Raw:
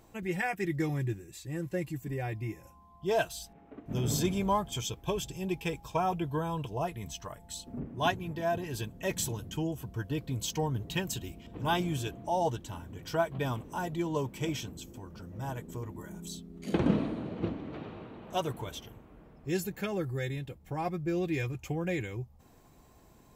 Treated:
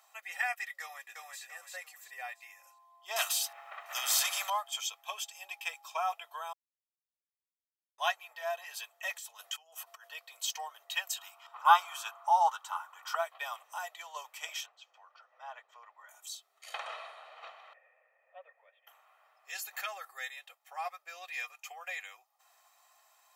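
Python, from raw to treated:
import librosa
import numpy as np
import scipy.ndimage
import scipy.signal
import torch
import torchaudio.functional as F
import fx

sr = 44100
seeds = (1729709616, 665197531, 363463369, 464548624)

y = fx.echo_throw(x, sr, start_s=0.81, length_s=0.61, ms=340, feedback_pct=35, wet_db=-2.5)
y = fx.spectral_comp(y, sr, ratio=2.0, at=(3.16, 4.5))
y = fx.over_compress(y, sr, threshold_db=-42.0, ratio=-1.0, at=(9.15, 10.07), fade=0.02)
y = fx.band_shelf(y, sr, hz=1100.0, db=14.0, octaves=1.0, at=(11.18, 13.15))
y = fx.air_absorb(y, sr, metres=240.0, at=(14.66, 16.09))
y = fx.formant_cascade(y, sr, vowel='e', at=(17.73, 18.87))
y = fx.env_flatten(y, sr, amount_pct=50, at=(19.67, 20.3))
y = fx.edit(y, sr, fx.silence(start_s=6.53, length_s=1.45), tone=tone)
y = scipy.signal.sosfilt(scipy.signal.butter(6, 790.0, 'highpass', fs=sr, output='sos'), y)
y = y + 0.51 * np.pad(y, (int(1.6 * sr / 1000.0), 0))[:len(y)]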